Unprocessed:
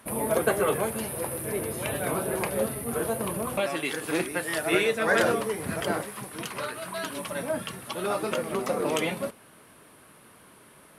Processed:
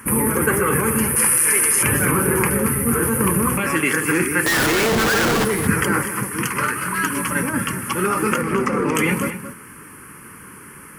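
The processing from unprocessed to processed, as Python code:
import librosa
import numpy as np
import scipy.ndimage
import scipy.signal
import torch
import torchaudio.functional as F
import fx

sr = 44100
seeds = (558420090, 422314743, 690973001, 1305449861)

p1 = fx.weighting(x, sr, curve='ITU-R 468', at=(1.16, 1.83))
p2 = fx.over_compress(p1, sr, threshold_db=-29.0, ratio=-0.5)
p3 = p1 + F.gain(torch.from_numpy(p2), -0.5).numpy()
p4 = fx.fixed_phaser(p3, sr, hz=1600.0, stages=4)
p5 = fx.schmitt(p4, sr, flips_db=-31.5, at=(4.46, 5.45))
p6 = fx.air_absorb(p5, sr, metres=73.0, at=(8.41, 8.95))
p7 = p6 + fx.echo_single(p6, sr, ms=227, db=-11.0, dry=0)
y = F.gain(torch.from_numpy(p7), 8.5).numpy()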